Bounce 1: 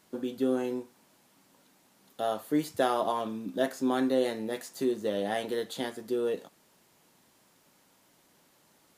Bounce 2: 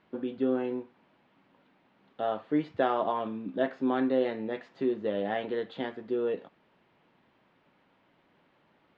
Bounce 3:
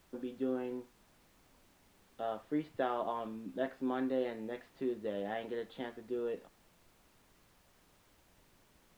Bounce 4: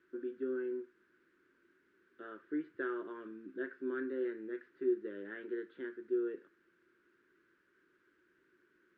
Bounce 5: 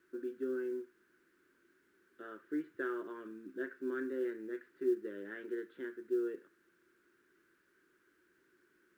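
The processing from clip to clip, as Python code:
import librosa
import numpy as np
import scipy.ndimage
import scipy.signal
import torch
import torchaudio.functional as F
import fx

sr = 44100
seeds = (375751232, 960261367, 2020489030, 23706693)

y1 = scipy.signal.sosfilt(scipy.signal.butter(4, 3000.0, 'lowpass', fs=sr, output='sos'), x)
y2 = fx.dmg_noise_colour(y1, sr, seeds[0], colour='pink', level_db=-60.0)
y2 = y2 * librosa.db_to_amplitude(-7.5)
y3 = fx.double_bandpass(y2, sr, hz=740.0, octaves=2.1)
y3 = y3 * librosa.db_to_amplitude(7.0)
y4 = fx.quant_companded(y3, sr, bits=8)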